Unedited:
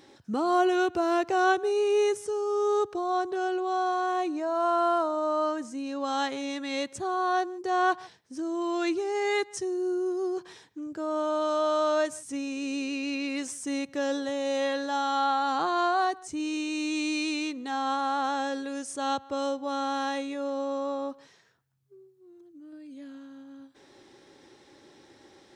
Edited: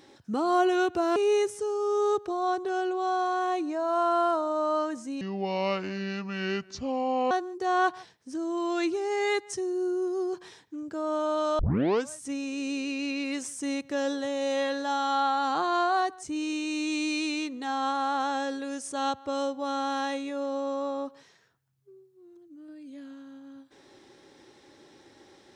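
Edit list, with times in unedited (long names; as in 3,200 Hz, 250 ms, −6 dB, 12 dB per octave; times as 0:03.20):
0:01.16–0:01.83: remove
0:05.88–0:07.35: play speed 70%
0:11.63: tape start 0.51 s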